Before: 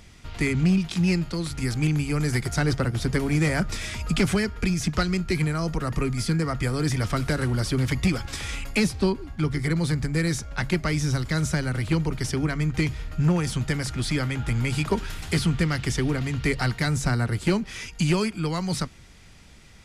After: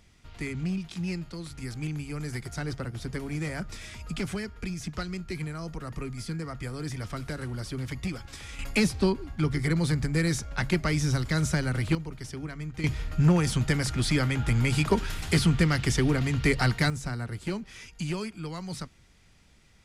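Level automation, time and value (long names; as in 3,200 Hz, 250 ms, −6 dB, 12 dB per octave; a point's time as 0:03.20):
−10 dB
from 0:08.59 −1.5 dB
from 0:11.95 −11.5 dB
from 0:12.84 +0.5 dB
from 0:16.90 −9.5 dB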